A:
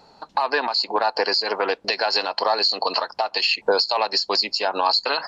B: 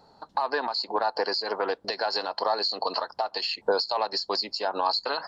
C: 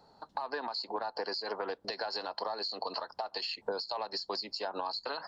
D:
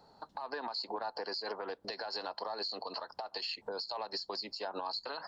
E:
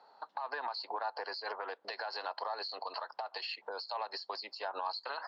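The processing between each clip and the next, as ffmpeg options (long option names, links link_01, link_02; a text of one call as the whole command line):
ffmpeg -i in.wav -af "equalizer=frequency=100:width_type=o:width=0.67:gain=5,equalizer=frequency=2500:width_type=o:width=0.67:gain=-10,equalizer=frequency=6300:width_type=o:width=0.67:gain=-5,volume=-4.5dB" out.wav
ffmpeg -i in.wav -filter_complex "[0:a]acrossover=split=240[link_01][link_02];[link_02]acompressor=threshold=-28dB:ratio=6[link_03];[link_01][link_03]amix=inputs=2:normalize=0,volume=-4.5dB" out.wav
ffmpeg -i in.wav -af "alimiter=level_in=3.5dB:limit=-24dB:level=0:latency=1:release=162,volume=-3.5dB" out.wav
ffmpeg -i in.wav -af "highpass=700,lowpass=3100,volume=4dB" out.wav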